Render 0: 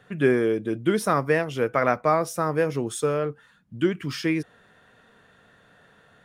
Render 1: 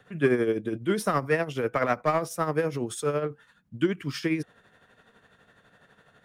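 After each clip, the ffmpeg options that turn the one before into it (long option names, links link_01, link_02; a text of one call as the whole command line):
ffmpeg -i in.wav -filter_complex "[0:a]acrossover=split=370|1100[link_01][link_02][link_03];[link_02]asoftclip=type=hard:threshold=-22dB[link_04];[link_01][link_04][link_03]amix=inputs=3:normalize=0,tremolo=f=12:d=0.58" out.wav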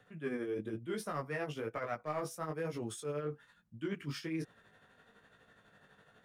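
ffmpeg -i in.wav -af "flanger=delay=17.5:depth=3.1:speed=1.1,areverse,acompressor=threshold=-33dB:ratio=6,areverse,volume=-2dB" out.wav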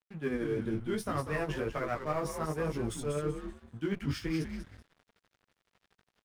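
ffmpeg -i in.wav -filter_complex "[0:a]lowshelf=frequency=110:gain=9.5,asplit=5[link_01][link_02][link_03][link_04][link_05];[link_02]adelay=192,afreqshift=-110,volume=-7dB[link_06];[link_03]adelay=384,afreqshift=-220,volume=-17.5dB[link_07];[link_04]adelay=576,afreqshift=-330,volume=-27.9dB[link_08];[link_05]adelay=768,afreqshift=-440,volume=-38.4dB[link_09];[link_01][link_06][link_07][link_08][link_09]amix=inputs=5:normalize=0,aeval=exprs='sgn(val(0))*max(abs(val(0))-0.0015,0)':channel_layout=same,volume=4dB" out.wav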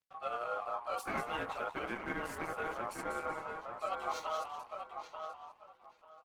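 ffmpeg -i in.wav -filter_complex "[0:a]aeval=exprs='val(0)*sin(2*PI*950*n/s)':channel_layout=same,asplit=2[link_01][link_02];[link_02]adelay=889,lowpass=frequency=2800:poles=1,volume=-6dB,asplit=2[link_03][link_04];[link_04]adelay=889,lowpass=frequency=2800:poles=1,volume=0.21,asplit=2[link_05][link_06];[link_06]adelay=889,lowpass=frequency=2800:poles=1,volume=0.21[link_07];[link_03][link_05][link_07]amix=inputs=3:normalize=0[link_08];[link_01][link_08]amix=inputs=2:normalize=0,volume=-2dB" -ar 48000 -c:a libopus -b:a 16k out.opus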